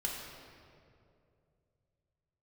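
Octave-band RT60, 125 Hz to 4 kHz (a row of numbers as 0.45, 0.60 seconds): 3.6, 2.7, 2.9, 2.2, 1.8, 1.5 seconds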